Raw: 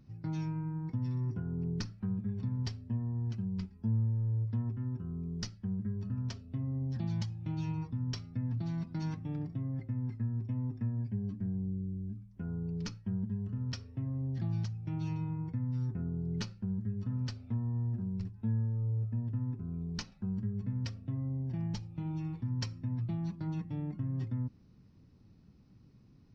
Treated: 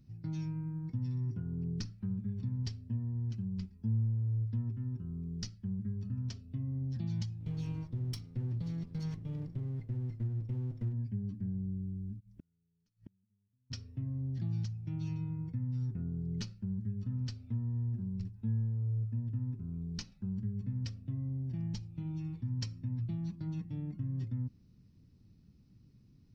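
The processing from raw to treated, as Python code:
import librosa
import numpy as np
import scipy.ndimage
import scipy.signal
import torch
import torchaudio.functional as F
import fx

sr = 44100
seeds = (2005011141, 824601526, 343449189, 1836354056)

y = fx.lower_of_two(x, sr, delay_ms=0.93, at=(7.39, 10.92), fade=0.02)
y = fx.gate_flip(y, sr, shuts_db=-35.0, range_db=-41, at=(12.19, 13.7), fade=0.02)
y = fx.peak_eq(y, sr, hz=890.0, db=-10.5, octaves=2.6)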